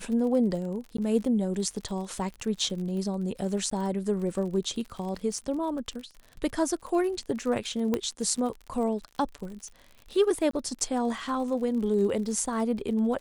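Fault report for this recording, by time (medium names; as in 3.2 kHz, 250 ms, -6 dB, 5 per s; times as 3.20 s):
crackle 52 per s -36 dBFS
0.97–0.98 s: dropout 14 ms
3.70–3.71 s: dropout 14 ms
7.94 s: pop -14 dBFS
10.51–10.53 s: dropout 24 ms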